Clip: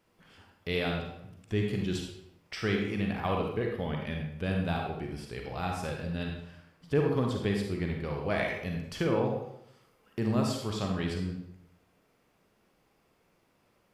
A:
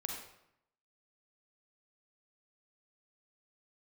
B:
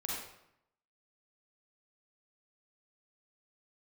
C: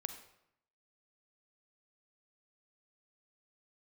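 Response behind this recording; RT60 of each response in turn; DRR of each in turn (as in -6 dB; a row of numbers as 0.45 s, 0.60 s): A; 0.75 s, 0.75 s, 0.75 s; 0.5 dB, -4.5 dB, 8.0 dB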